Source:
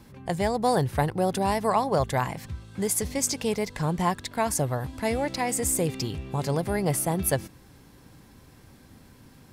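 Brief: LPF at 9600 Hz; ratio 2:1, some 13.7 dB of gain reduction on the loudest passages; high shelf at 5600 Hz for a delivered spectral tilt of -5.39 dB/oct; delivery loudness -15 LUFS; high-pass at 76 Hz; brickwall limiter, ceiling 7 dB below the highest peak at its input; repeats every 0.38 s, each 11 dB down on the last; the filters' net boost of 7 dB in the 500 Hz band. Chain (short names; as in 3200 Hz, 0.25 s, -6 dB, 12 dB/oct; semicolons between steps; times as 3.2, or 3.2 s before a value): HPF 76 Hz; LPF 9600 Hz; bell 500 Hz +8.5 dB; high shelf 5600 Hz -7 dB; compressor 2:1, threshold -40 dBFS; limiter -26.5 dBFS; feedback echo 0.38 s, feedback 28%, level -11 dB; gain +22 dB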